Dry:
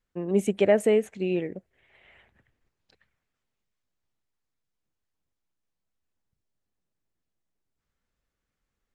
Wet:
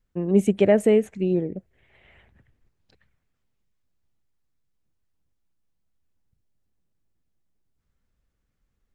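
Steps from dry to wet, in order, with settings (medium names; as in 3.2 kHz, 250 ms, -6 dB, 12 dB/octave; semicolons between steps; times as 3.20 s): 1.15–1.57 s: touch-sensitive phaser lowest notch 540 Hz, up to 2.9 kHz, full sweep at -22 dBFS; bass shelf 270 Hz +10.5 dB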